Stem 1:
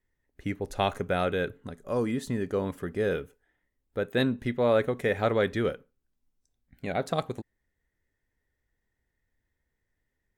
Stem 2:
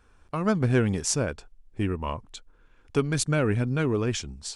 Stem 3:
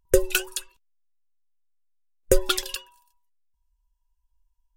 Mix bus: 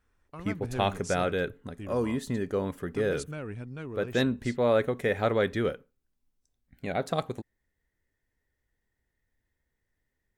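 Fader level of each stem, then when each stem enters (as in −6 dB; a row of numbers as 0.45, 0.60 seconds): −0.5 dB, −14.0 dB, muted; 0.00 s, 0.00 s, muted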